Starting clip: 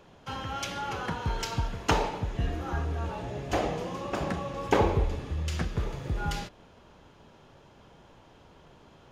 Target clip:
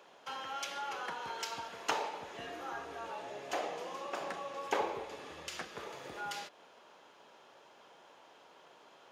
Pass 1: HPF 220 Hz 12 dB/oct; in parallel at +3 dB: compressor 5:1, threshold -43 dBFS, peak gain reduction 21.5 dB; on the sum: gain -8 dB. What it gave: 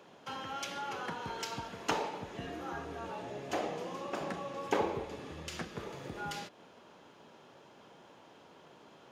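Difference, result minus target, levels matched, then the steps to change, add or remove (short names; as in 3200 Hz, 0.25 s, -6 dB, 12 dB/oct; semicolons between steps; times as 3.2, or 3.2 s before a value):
250 Hz band +7.0 dB
change: HPF 510 Hz 12 dB/oct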